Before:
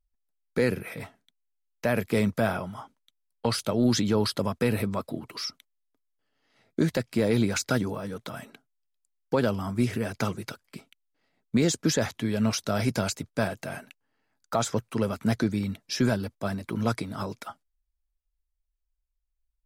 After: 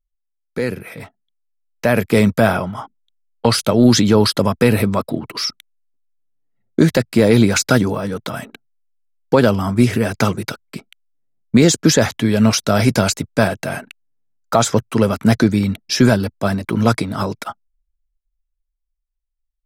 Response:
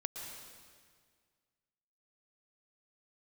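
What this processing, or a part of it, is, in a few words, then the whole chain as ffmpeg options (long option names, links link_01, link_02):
voice memo with heavy noise removal: -af "anlmdn=0.00398,dynaudnorm=framelen=150:gausssize=21:maxgain=10dB,volume=2.5dB"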